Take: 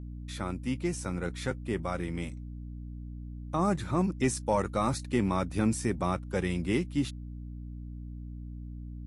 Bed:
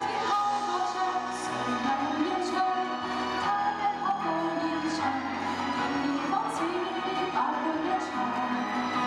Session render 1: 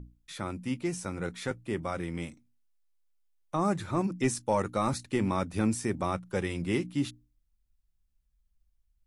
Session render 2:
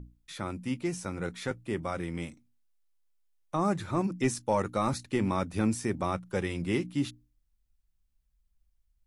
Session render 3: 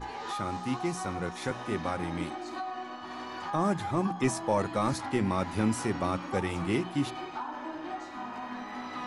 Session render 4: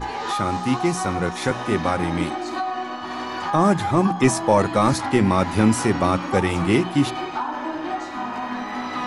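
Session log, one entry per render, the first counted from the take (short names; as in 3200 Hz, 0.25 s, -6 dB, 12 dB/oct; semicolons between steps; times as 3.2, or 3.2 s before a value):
notches 60/120/180/240/300 Hz
dynamic EQ 8600 Hz, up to -3 dB, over -55 dBFS, Q 2.6
add bed -9.5 dB
gain +10.5 dB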